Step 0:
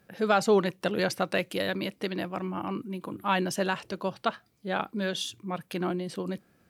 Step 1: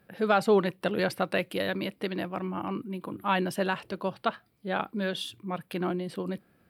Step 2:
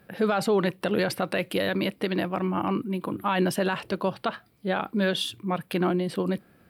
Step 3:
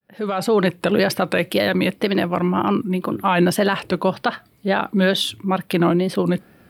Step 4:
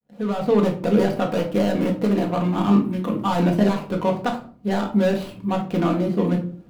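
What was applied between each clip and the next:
peaking EQ 6.4 kHz -12.5 dB 0.62 oct
peak limiter -20 dBFS, peak gain reduction 10 dB; trim +6.5 dB
fade-in on the opening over 0.66 s; wow and flutter 100 cents; trim +7.5 dB
median filter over 25 samples; simulated room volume 350 m³, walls furnished, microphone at 1.8 m; trim -4 dB

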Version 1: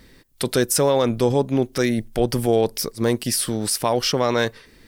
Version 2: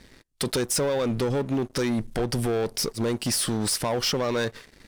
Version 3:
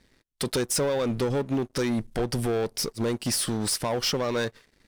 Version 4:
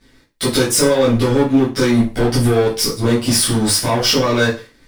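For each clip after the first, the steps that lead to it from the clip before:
low-pass 10 kHz 12 dB/octave; compression, threshold -20 dBFS, peak gain reduction 7 dB; waveshaping leveller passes 3; trim -8 dB
upward expansion 1.5:1, over -44 dBFS
reverberation RT60 0.35 s, pre-delay 6 ms, DRR -10 dB; trim +1 dB

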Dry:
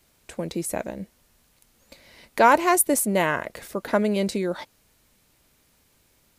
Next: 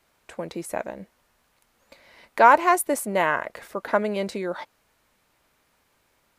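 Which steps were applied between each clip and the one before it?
peaking EQ 1.1 kHz +11.5 dB 2.9 oct; trim -8.5 dB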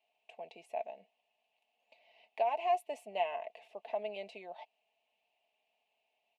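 comb 4.6 ms, depth 48%; peak limiter -10.5 dBFS, peak gain reduction 10 dB; two resonant band-passes 1.4 kHz, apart 1.9 oct; trim -3.5 dB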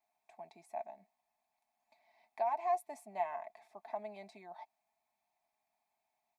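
static phaser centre 1.2 kHz, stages 4; trim +3 dB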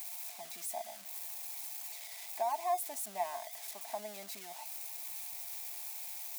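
zero-crossing glitches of -34.5 dBFS

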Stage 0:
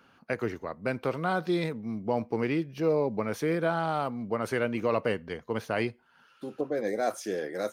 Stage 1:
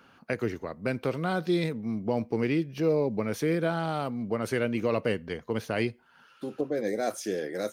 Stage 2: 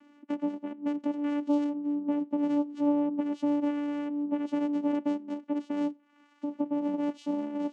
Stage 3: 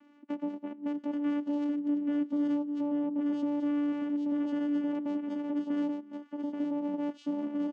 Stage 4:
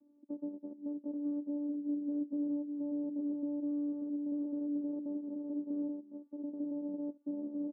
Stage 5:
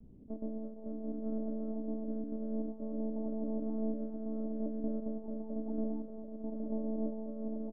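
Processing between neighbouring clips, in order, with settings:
dynamic bell 1 kHz, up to -7 dB, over -42 dBFS, Q 0.81; trim +3 dB
in parallel at 0 dB: compression, threshold -36 dBFS, peak gain reduction 14.5 dB; on the sum: vocoder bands 4, saw 291 Hz; small resonant body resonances 210/3000 Hz, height 12 dB, ringing for 30 ms; trim -7.5 dB
peak limiter -22.5 dBFS, peak gain reduction 6 dB; distance through air 59 m; delay 831 ms -4 dB; trim -2 dB
four-pole ladder low-pass 590 Hz, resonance 40%
hum 50 Hz, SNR 18 dB; on a send: multi-tap echo 86/131/186/342/390/640 ms -15/-5.5/-9.5/-6/-11/-14.5 dB; on the sum: monotone LPC vocoder at 8 kHz 220 Hz

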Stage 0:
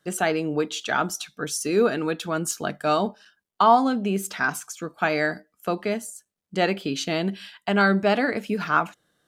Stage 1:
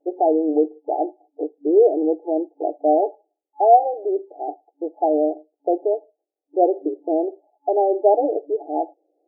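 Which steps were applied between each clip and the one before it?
FFT band-pass 280–860 Hz; trim +7 dB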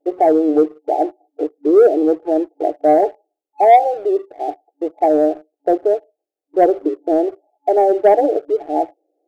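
waveshaping leveller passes 1; trim +1.5 dB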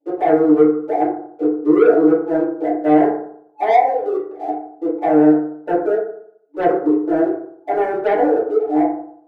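saturation -10.5 dBFS, distortion -13 dB; reverberation RT60 0.65 s, pre-delay 3 ms, DRR -9 dB; trim -10.5 dB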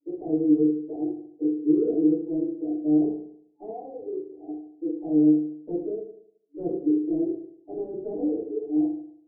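four-pole ladder low-pass 370 Hz, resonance 25%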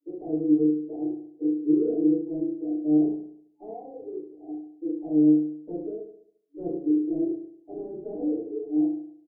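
doubling 33 ms -7 dB; trim -3 dB

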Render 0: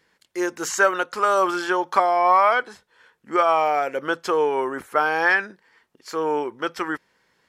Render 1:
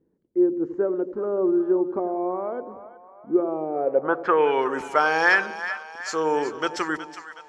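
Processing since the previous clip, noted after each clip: low-pass sweep 330 Hz -> 6.9 kHz, 3.71–4.81 s; two-band feedback delay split 620 Hz, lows 88 ms, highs 369 ms, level -11.5 dB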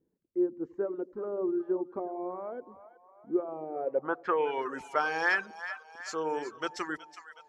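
reverb removal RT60 0.67 s; trim -8 dB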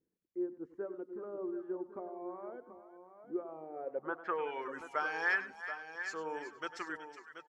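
peaking EQ 1.8 kHz +5 dB 1.2 oct; multi-tap echo 99/731 ms -15/-11 dB; trim -9 dB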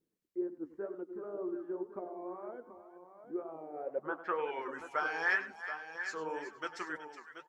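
flange 2 Hz, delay 4.5 ms, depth 9 ms, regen +55%; trim +5 dB

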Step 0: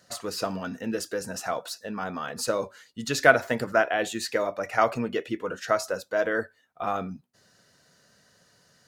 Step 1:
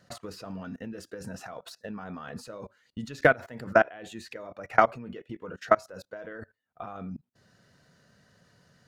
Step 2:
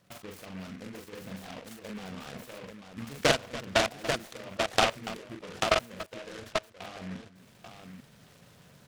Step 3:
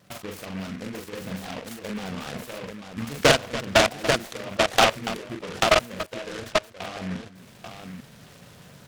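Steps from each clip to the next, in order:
level held to a coarse grid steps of 21 dB; transient shaper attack +6 dB, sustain -2 dB; tone controls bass +7 dB, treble -8 dB
reverse; upward compressor, threshold -44 dBFS; reverse; multi-tap echo 43/286/839 ms -3.5/-14.5/-5 dB; delay time shaken by noise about 1.7 kHz, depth 0.14 ms; trim -5 dB
vibrato 3.6 Hz 39 cents; overload inside the chain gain 17 dB; trim +8 dB

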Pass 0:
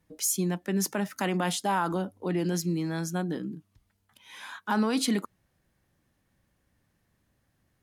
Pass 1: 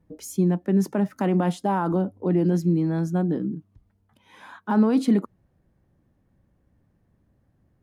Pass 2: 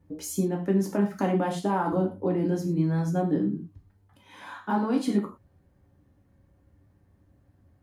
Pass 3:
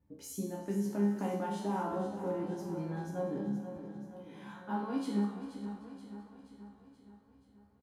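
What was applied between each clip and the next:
tilt shelf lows +10 dB, about 1.3 kHz; trim -1.5 dB
compression 2:1, threshold -26 dBFS, peak gain reduction 6.5 dB; gated-style reverb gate 140 ms falling, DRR 0.5 dB
feedback comb 68 Hz, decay 0.6 s, harmonics all, mix 90%; on a send: feedback delay 478 ms, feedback 56%, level -11 dB; on the sum: modulated delay 195 ms, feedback 71%, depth 128 cents, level -16 dB

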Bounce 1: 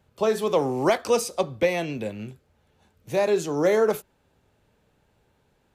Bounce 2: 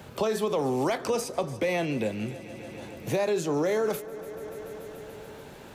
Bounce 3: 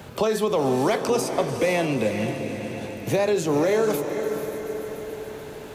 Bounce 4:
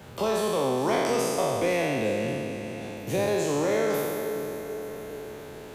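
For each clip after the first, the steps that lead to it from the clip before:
peak limiter -18.5 dBFS, peak gain reduction 8 dB; multi-head delay 144 ms, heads first and second, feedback 59%, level -22.5 dB; three bands compressed up and down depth 70%
echo that smears into a reverb 469 ms, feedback 45%, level -7.5 dB; trim +4.5 dB
spectral sustain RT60 2.10 s; trim -7 dB

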